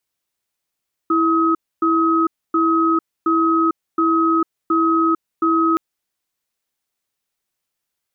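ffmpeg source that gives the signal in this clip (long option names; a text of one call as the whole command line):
ffmpeg -f lavfi -i "aevalsrc='0.158*(sin(2*PI*328*t)+sin(2*PI*1270*t))*clip(min(mod(t,0.72),0.45-mod(t,0.72))/0.005,0,1)':duration=4.67:sample_rate=44100" out.wav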